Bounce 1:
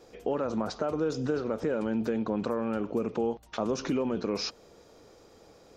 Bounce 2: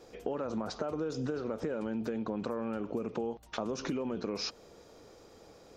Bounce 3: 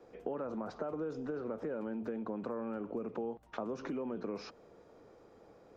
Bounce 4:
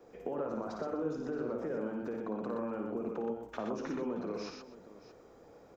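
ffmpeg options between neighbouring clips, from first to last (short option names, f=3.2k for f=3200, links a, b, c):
-af "acompressor=threshold=-31dB:ratio=6"
-filter_complex "[0:a]acrossover=split=170 2200:gain=0.0891 1 0.2[a][b][c];[a][b][c]amix=inputs=3:normalize=0,acrossover=split=110|3300[d][e][f];[d]aeval=exprs='0.00316*sin(PI/2*3.98*val(0)/0.00316)':c=same[g];[g][e][f]amix=inputs=3:normalize=0,volume=-3dB"
-filter_complex "[0:a]aexciter=amount=1.3:drive=4.5:freq=5.9k,asplit=2[a][b];[b]aecho=0:1:56|89|122|250|624:0.473|0.299|0.596|0.112|0.158[c];[a][c]amix=inputs=2:normalize=0"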